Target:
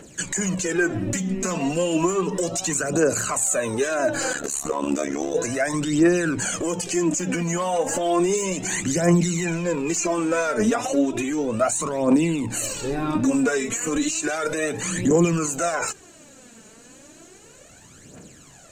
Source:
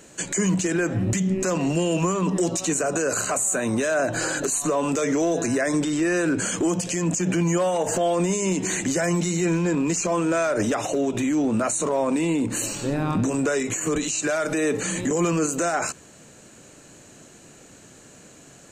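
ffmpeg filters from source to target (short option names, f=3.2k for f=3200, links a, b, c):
-filter_complex "[0:a]aphaser=in_gain=1:out_gain=1:delay=4.7:decay=0.65:speed=0.33:type=triangular,asettb=1/sr,asplit=3[a][b][c];[a]atrim=end=4.334[d];[b]atrim=start=4.33:end=5.35,asetpts=PTS-STARTPTS,afade=t=in:d=0.004:c=qsin,afade=t=out:st=1.016:d=0.004:c=qsin,tremolo=f=71:d=0.919[e];[c]atrim=start=5.346[f];[d][e]acrossfade=d=0.004:c1=hsin:c2=qsin[g];[g][f]acrossfade=d=0.004:c1=qsin:c2=hsin,volume=-1.5dB"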